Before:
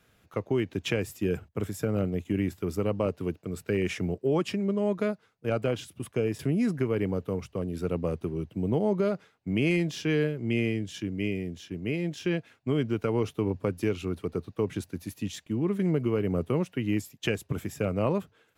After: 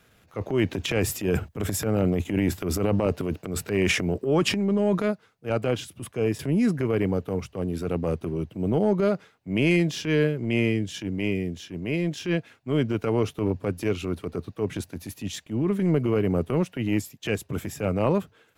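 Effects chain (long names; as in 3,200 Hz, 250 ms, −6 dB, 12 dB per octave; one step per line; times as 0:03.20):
transient designer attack −9 dB, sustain +9 dB, from 0:04.99 sustain 0 dB
level +5 dB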